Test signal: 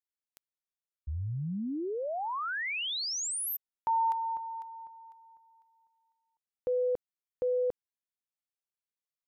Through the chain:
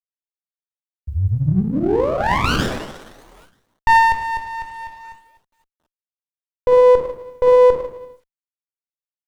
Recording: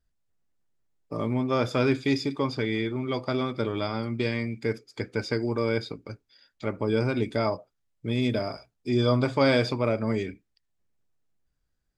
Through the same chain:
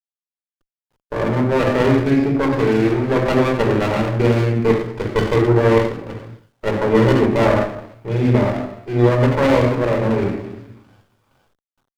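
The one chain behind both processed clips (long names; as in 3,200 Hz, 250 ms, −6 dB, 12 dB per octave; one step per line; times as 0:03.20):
downsampling to 22,050 Hz
drawn EQ curve 130 Hz 0 dB, 280 Hz +1 dB, 1,600 Hz +12 dB, 4,100 Hz −14 dB
delay with a high-pass on its return 466 ms, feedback 69%, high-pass 3,300 Hz, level −17 dB
rectangular room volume 2,600 cubic metres, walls furnished, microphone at 4.7 metres
dynamic equaliser 220 Hz, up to +5 dB, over −25 dBFS, Q 0.87
automatic gain control gain up to 8 dB
downward expander −34 dBFS
bit reduction 11 bits
windowed peak hold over 17 samples
level −1 dB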